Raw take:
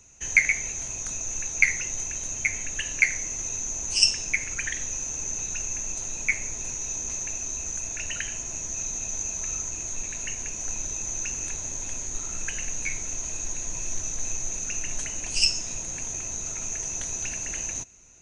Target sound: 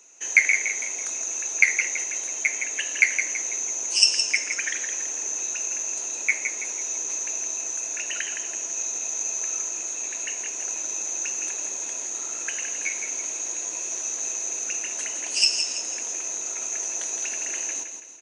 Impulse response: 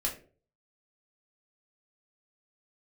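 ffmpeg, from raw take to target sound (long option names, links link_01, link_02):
-filter_complex "[0:a]highpass=frequency=320:width=0.5412,highpass=frequency=320:width=1.3066,asplit=2[link_01][link_02];[link_02]aecho=0:1:165|330|495|660|825:0.422|0.173|0.0709|0.0291|0.0119[link_03];[link_01][link_03]amix=inputs=2:normalize=0,volume=2dB"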